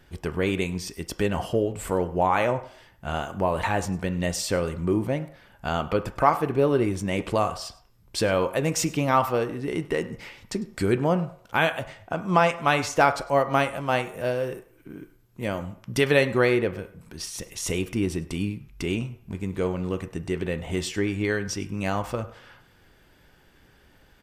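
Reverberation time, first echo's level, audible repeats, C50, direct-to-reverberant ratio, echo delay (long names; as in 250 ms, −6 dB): 0.60 s, −20.0 dB, 1, 13.5 dB, 9.0 dB, 101 ms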